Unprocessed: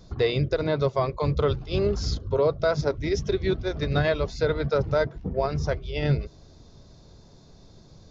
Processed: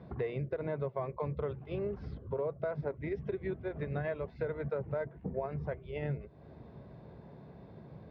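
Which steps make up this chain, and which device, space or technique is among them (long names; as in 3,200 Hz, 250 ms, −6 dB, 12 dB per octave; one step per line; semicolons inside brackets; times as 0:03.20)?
bass amplifier (downward compressor 4 to 1, threshold −38 dBFS, peak gain reduction 16.5 dB; loudspeaker in its box 73–2,200 Hz, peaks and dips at 91 Hz −10 dB, 300 Hz −4 dB, 1,300 Hz −6 dB)
level +3.5 dB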